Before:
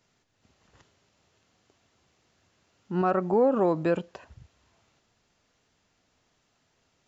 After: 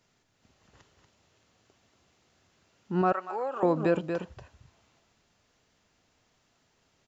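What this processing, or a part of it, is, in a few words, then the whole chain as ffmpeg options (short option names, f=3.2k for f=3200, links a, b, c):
ducked delay: -filter_complex "[0:a]asplit=3[a][b][c];[b]adelay=236,volume=-6.5dB[d];[c]apad=whole_len=322398[e];[d][e]sidechaincompress=threshold=-30dB:ratio=8:attack=9.5:release=141[f];[a][f]amix=inputs=2:normalize=0,asettb=1/sr,asplit=3[g][h][i];[g]atrim=end=3.124[j];[h]atrim=start=3.12:end=3.63,asetpts=PTS-STARTPTS,afade=t=in:d=0.004:c=qsin,afade=t=out:st=0.506:d=0.004:c=qsin,highpass=960[k];[i]atrim=start=3.626[l];[j][k]acrossfade=d=0.004:c1=hsin:c2=qsin[m];[m][l]acrossfade=d=0.004:c1=qsin:c2=hsin"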